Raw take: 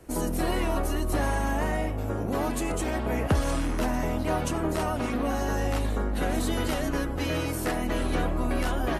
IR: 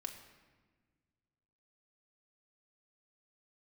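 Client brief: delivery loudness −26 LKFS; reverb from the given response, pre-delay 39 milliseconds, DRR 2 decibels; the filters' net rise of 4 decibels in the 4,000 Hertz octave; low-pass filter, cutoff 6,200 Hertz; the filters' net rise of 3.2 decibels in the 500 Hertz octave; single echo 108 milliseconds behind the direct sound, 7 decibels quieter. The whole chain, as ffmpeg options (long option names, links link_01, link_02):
-filter_complex "[0:a]lowpass=6200,equalizer=frequency=500:width_type=o:gain=4,equalizer=frequency=4000:width_type=o:gain=6,aecho=1:1:108:0.447,asplit=2[link_01][link_02];[1:a]atrim=start_sample=2205,adelay=39[link_03];[link_02][link_03]afir=irnorm=-1:irlink=0,volume=0dB[link_04];[link_01][link_04]amix=inputs=2:normalize=0,volume=-2dB"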